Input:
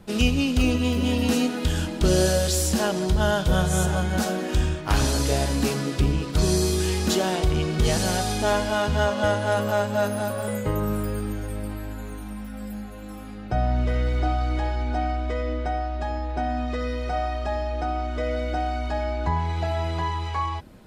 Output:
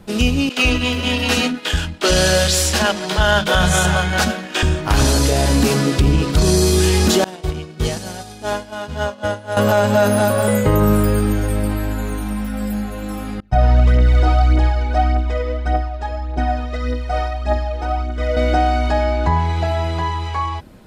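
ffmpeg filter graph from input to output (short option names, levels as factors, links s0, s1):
-filter_complex "[0:a]asettb=1/sr,asplit=3[s0][s1][s2];[s0]atrim=end=0.494[s3];[s1]atrim=start=0.49:end=4.63,asetpts=PTS-STARTPTS,afade=t=in:d=0.004:c=qsin,afade=t=out:st=4.136:d=0.004:c=qsin,agate=range=0.0224:threshold=0.112:ratio=3:release=100:detection=peak,equalizer=f=2300:t=o:w=3:g=11,acrossover=split=290[s4][s5];[s4]adelay=80[s6];[s6][s5]amix=inputs=2:normalize=0,atrim=end_sample=182574[s7];[s2]atrim=start=4.626[s8];[s3][s7]acrossfade=d=0.004:c1=hsin:c2=qsin[s9];[s9][s8]acrossfade=d=0.004:c1=qsin:c2=hsin,asettb=1/sr,asplit=3[s10][s11][s12];[s10]atrim=end=7.244[s13];[s11]atrim=start=7.24:end=9.57,asetpts=PTS-STARTPTS,afade=t=in:d=0.004:c=qsin,afade=t=out:st=2.326:d=0.004:c=qsin,agate=range=0.0224:threshold=0.224:ratio=3:release=100:detection=peak,highpass=62[s14];[s12]atrim=start=9.566[s15];[s13][s14]acrossfade=d=0.004:c1=hsin:c2=qsin[s16];[s16][s15]acrossfade=d=0.004:c1=qsin:c2=hsin,asettb=1/sr,asplit=3[s17][s18][s19];[s17]atrim=end=13.404[s20];[s18]atrim=start=13.4:end=18.37,asetpts=PTS-STARTPTS,afade=t=in:d=0.004:c=qsin,afade=t=out:st=4.966:d=0.004:c=qsin,agate=range=0.0224:threshold=0.1:ratio=3:release=100:detection=peak,aphaser=in_gain=1:out_gain=1:delay=2.4:decay=0.56:speed=1.7:type=triangular[s21];[s19]atrim=start=18.366[s22];[s20][s21]acrossfade=d=0.004:c1=hsin:c2=qsin[s23];[s23][s22]acrossfade=d=0.004:c1=qsin:c2=hsin,dynaudnorm=f=190:g=21:m=2.37,alimiter=limit=0.316:level=0:latency=1:release=36,acontrast=27"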